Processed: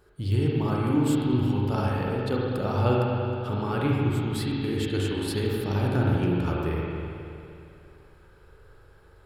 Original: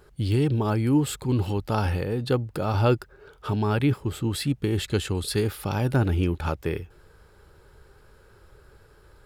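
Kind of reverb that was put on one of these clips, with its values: spring tank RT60 2.7 s, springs 40/51 ms, chirp 30 ms, DRR -4 dB; trim -6 dB

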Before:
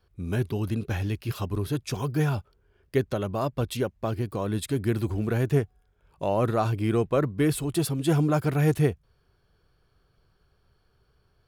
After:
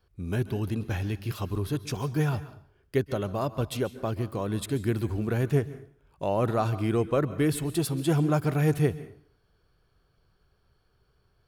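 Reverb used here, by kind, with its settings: plate-style reverb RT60 0.55 s, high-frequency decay 0.85×, pre-delay 120 ms, DRR 15 dB; trim -1.5 dB

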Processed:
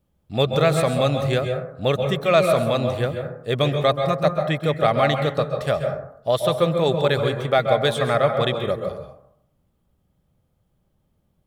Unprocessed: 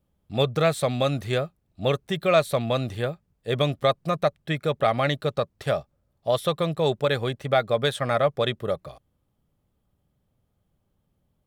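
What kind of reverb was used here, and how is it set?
plate-style reverb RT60 0.7 s, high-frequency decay 0.35×, pre-delay 120 ms, DRR 5 dB; trim +2.5 dB

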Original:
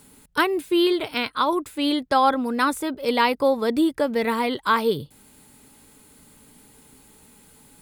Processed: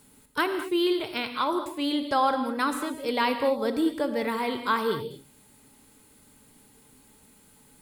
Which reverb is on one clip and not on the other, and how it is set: gated-style reverb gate 250 ms flat, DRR 7 dB; trim -5.5 dB

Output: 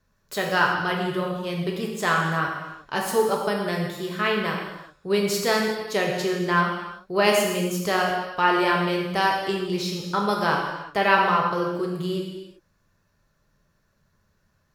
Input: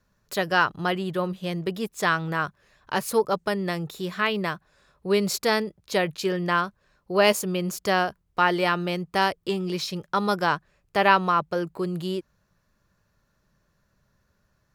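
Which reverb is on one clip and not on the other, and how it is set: gated-style reverb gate 410 ms falling, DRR -1 dB; trim -2 dB

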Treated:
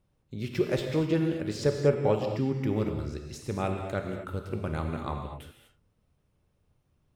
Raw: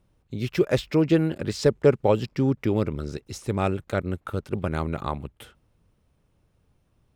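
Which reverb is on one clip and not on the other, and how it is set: gated-style reverb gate 270 ms flat, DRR 3 dB; trim -6.5 dB

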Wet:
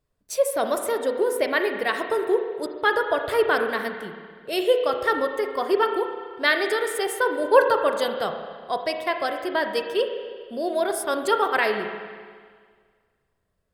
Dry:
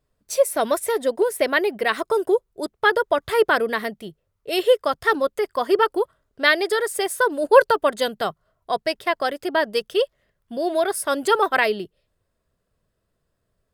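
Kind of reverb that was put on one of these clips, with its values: spring tank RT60 1.8 s, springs 30/38 ms, chirp 45 ms, DRR 5 dB; trim -3.5 dB

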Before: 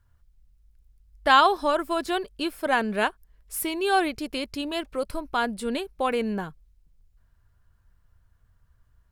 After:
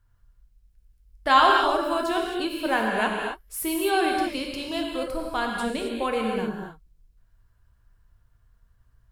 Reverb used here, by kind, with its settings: gated-style reverb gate 290 ms flat, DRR -0.5 dB; trim -2.5 dB

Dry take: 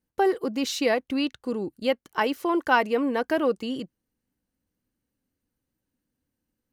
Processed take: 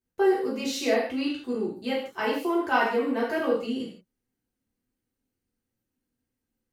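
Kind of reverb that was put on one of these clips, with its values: gated-style reverb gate 200 ms falling, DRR -7.5 dB; trim -9.5 dB

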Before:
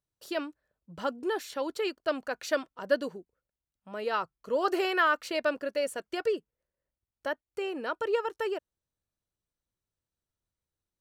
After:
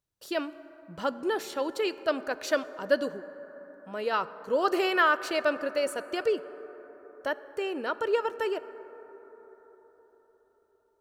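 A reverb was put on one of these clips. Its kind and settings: plate-style reverb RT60 5 s, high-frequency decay 0.25×, DRR 14 dB; trim +2 dB

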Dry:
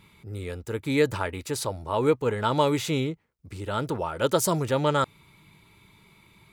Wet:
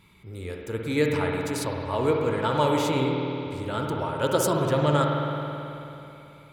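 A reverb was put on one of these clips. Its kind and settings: spring tank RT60 3.1 s, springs 54 ms, chirp 55 ms, DRR 0 dB; trim -2 dB

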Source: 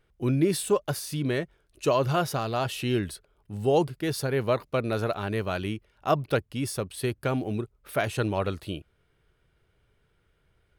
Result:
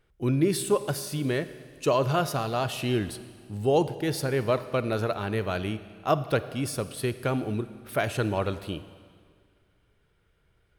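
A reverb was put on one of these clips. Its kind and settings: Schroeder reverb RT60 1.9 s, DRR 13 dB

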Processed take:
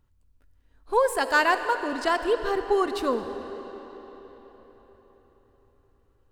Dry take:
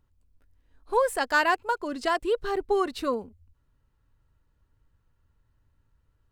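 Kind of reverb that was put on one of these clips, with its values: algorithmic reverb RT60 4.6 s, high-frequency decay 0.8×, pre-delay 15 ms, DRR 8.5 dB; trim +1.5 dB

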